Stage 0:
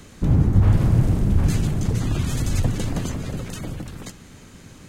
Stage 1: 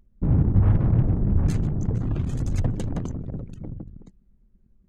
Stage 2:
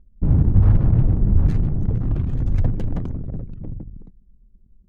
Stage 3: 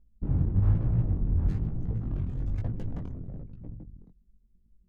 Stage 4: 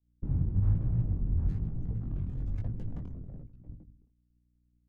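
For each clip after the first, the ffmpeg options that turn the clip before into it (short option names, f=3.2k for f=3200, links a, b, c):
-af "anlmdn=158,volume=-2.5dB"
-af "lowshelf=f=75:g=9,adynamicsmooth=sensitivity=7.5:basefreq=900"
-af "flanger=delay=17:depth=6:speed=1.1,volume=-7dB"
-filter_complex "[0:a]aeval=exprs='val(0)+0.00447*(sin(2*PI*60*n/s)+sin(2*PI*2*60*n/s)/2+sin(2*PI*3*60*n/s)/3+sin(2*PI*4*60*n/s)/4+sin(2*PI*5*60*n/s)/5)':c=same,acrossover=split=260[a][b];[b]acompressor=threshold=-51dB:ratio=2[c];[a][c]amix=inputs=2:normalize=0,agate=range=-33dB:threshold=-35dB:ratio=3:detection=peak,volume=-3dB"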